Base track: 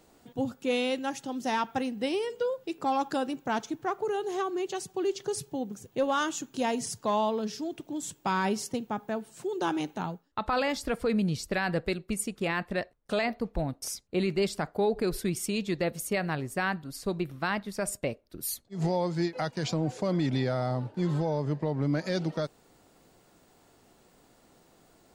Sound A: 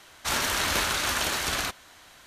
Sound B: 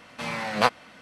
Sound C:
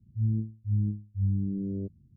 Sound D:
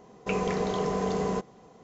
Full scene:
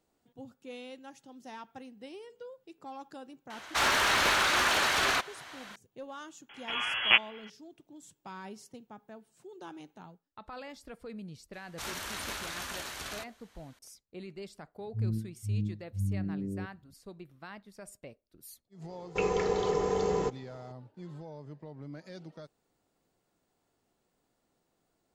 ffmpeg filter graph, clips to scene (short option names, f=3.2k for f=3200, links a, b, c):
-filter_complex "[1:a]asplit=2[a][b];[0:a]volume=-16.5dB[c];[a]asplit=2[d][e];[e]highpass=f=720:p=1,volume=16dB,asoftclip=type=tanh:threshold=-12dB[f];[d][f]amix=inputs=2:normalize=0,lowpass=f=2.3k:p=1,volume=-6dB[g];[2:a]lowpass=f=3k:t=q:w=0.5098,lowpass=f=3k:t=q:w=0.6013,lowpass=f=3k:t=q:w=0.9,lowpass=f=3k:t=q:w=2.563,afreqshift=-3500[h];[3:a]highpass=86[i];[4:a]aecho=1:1:2.3:0.6[j];[g]atrim=end=2.26,asetpts=PTS-STARTPTS,volume=-2.5dB,afade=t=in:d=0.004:c=hsin,afade=t=out:st=2.256:d=0.004:c=hsin,adelay=3500[k];[h]atrim=end=1.01,asetpts=PTS-STARTPTS,volume=-1.5dB,afade=t=in:d=0.004:c=hsin,afade=t=out:st=1.006:d=0.004:c=hsin,adelay=6490[l];[b]atrim=end=2.26,asetpts=PTS-STARTPTS,volume=-12.5dB,afade=t=in:d=0.004:c=hsin,afade=t=out:st=2.256:d=0.004:c=hsin,adelay=11530[m];[i]atrim=end=2.16,asetpts=PTS-STARTPTS,volume=-3dB,afade=t=in:d=0.004:c=hsin,afade=t=out:st=2.156:d=0.004:c=hsin,adelay=14780[n];[j]atrim=end=1.83,asetpts=PTS-STARTPTS,volume=-2.5dB,afade=t=in:d=0.004:c=hsin,afade=t=out:st=1.826:d=0.004:c=hsin,adelay=18890[o];[c][k][l][m][n][o]amix=inputs=6:normalize=0"